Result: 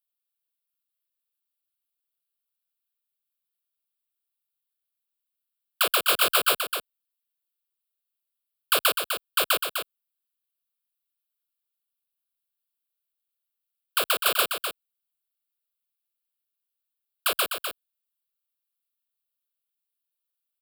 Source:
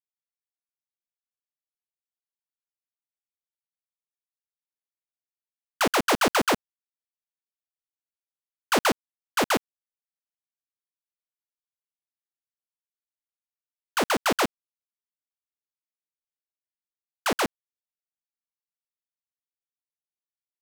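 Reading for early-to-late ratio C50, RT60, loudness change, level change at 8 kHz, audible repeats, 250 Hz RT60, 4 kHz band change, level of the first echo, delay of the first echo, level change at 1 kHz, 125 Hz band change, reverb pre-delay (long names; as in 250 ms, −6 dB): no reverb audible, no reverb audible, +1.5 dB, +3.5 dB, 1, no reverb audible, +5.5 dB, −7.0 dB, 252 ms, −2.5 dB, −14.0 dB, no reverb audible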